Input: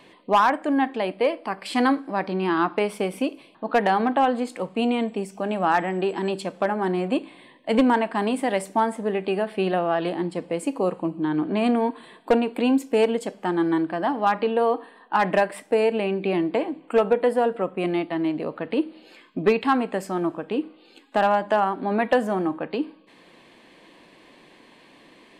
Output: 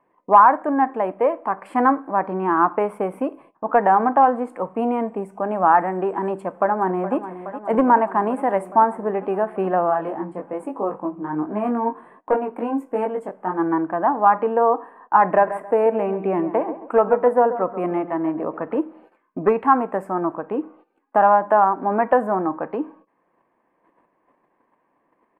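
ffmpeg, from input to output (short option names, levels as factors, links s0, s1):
-filter_complex "[0:a]asplit=2[s0][s1];[s1]afade=t=in:st=6.36:d=0.01,afade=t=out:st=7.16:d=0.01,aecho=0:1:420|840|1260|1680|2100|2520|2940|3360|3780|4200|4620|5040:0.237137|0.18971|0.151768|0.121414|0.0971315|0.0777052|0.0621641|0.0497313|0.039785|0.031828|0.0254624|0.0203699[s2];[s0][s2]amix=inputs=2:normalize=0,asplit=3[s3][s4][s5];[s3]afade=t=out:st=9.89:d=0.02[s6];[s4]flanger=delay=19:depth=2.7:speed=1.3,afade=t=in:st=9.89:d=0.02,afade=t=out:st=13.58:d=0.02[s7];[s5]afade=t=in:st=13.58:d=0.02[s8];[s6][s7][s8]amix=inputs=3:normalize=0,asettb=1/sr,asplit=3[s9][s10][s11];[s9]atrim=end=15.234[s12];[s10]atrim=start=15.23:end=18.77,asetpts=PTS-STARTPTS,afade=t=in:d=0.004:c=qsin,afade=t=out:st=3.536:d=0.004:c=qsin,asplit=2[s13][s14];[s14]adelay=136,lowpass=f=2000:p=1,volume=0.266,asplit=2[s15][s16];[s16]adelay=136,lowpass=f=2000:p=1,volume=0.33,asplit=2[s17][s18];[s18]adelay=136,lowpass=f=2000:p=1,volume=0.33[s19];[s13][s15][s17][s19]amix=inputs=4:normalize=0,atrim=end_sample=156114[s20];[s11]atrim=start=18.766[s21];[s12][s20]acrossfade=d=0.004:c1=hsin:c2=qsin[s22];[s22][s21]acrossfade=d=0.004:c1=qsin:c2=hsin,firequalizer=gain_entry='entry(210,0);entry(1000,10);entry(3800,-25);entry(9200,-4)':delay=0.05:min_phase=1,agate=range=0.141:threshold=0.00562:ratio=16:detection=peak,highshelf=f=4400:g=-7,volume=0.891"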